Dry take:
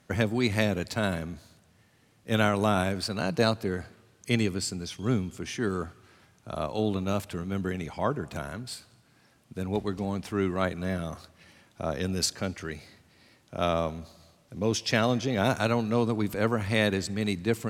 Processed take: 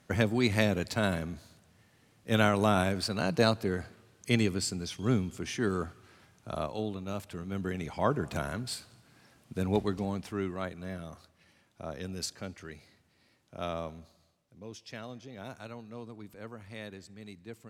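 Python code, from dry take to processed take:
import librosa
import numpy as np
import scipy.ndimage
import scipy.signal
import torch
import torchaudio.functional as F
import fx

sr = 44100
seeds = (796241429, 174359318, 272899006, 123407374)

y = fx.gain(x, sr, db=fx.line((6.54, -1.0), (6.96, -9.5), (8.25, 1.5), (9.73, 1.5), (10.66, -9.0), (13.99, -9.0), (14.66, -18.5)))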